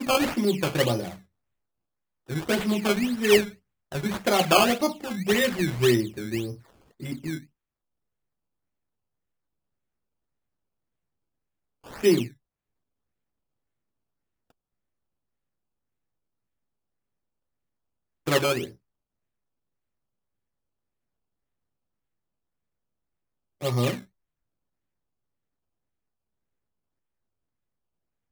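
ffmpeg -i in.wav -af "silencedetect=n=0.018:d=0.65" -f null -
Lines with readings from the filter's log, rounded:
silence_start: 1.14
silence_end: 2.30 | silence_duration: 1.16
silence_start: 7.38
silence_end: 11.93 | silence_duration: 4.55
silence_start: 12.28
silence_end: 18.27 | silence_duration: 5.99
silence_start: 18.67
silence_end: 23.62 | silence_duration: 4.95
silence_start: 23.99
silence_end: 28.32 | silence_duration: 4.32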